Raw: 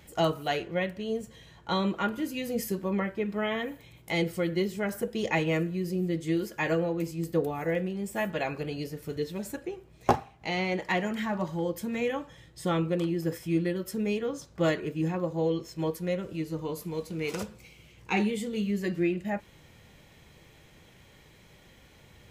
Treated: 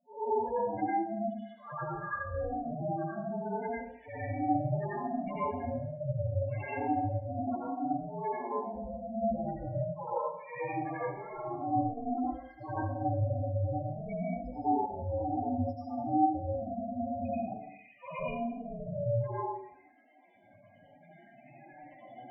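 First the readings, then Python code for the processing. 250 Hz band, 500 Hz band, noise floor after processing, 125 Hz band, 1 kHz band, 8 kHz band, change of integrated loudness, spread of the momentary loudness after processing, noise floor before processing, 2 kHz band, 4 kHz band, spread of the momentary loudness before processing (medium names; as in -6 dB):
-5.5 dB, -5.0 dB, -59 dBFS, -1.5 dB, +3.0 dB, under -35 dB, -4.0 dB, 9 LU, -56 dBFS, -11.0 dB, under -25 dB, 7 LU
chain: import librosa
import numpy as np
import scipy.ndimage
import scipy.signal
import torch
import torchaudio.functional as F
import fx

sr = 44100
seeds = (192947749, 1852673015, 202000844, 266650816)

p1 = fx.phase_scramble(x, sr, seeds[0], window_ms=200)
p2 = fx.recorder_agc(p1, sr, target_db=-16.5, rise_db_per_s=6.0, max_gain_db=30)
p3 = scipy.signal.sosfilt(scipy.signal.butter(4, 330.0, 'highpass', fs=sr, output='sos'), p2)
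p4 = p3 * np.sin(2.0 * np.pi * 230.0 * np.arange(len(p3)) / sr)
p5 = scipy.signal.sosfilt(scipy.signal.butter(2, 4600.0, 'lowpass', fs=sr, output='sos'), p4)
p6 = fx.spec_topn(p5, sr, count=4)
p7 = fx.env_lowpass(p6, sr, base_hz=2000.0, full_db=-31.0)
p8 = p7 + fx.echo_single(p7, sr, ms=216, db=-22.5, dry=0)
p9 = fx.rev_plate(p8, sr, seeds[1], rt60_s=0.62, hf_ratio=0.9, predelay_ms=75, drr_db=-8.5)
y = F.gain(torch.from_numpy(p9), -6.5).numpy()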